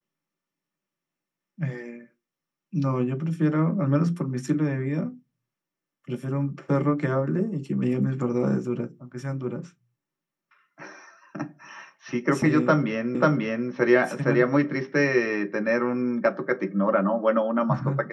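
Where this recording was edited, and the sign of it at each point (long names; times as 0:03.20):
0:13.15: the same again, the last 0.54 s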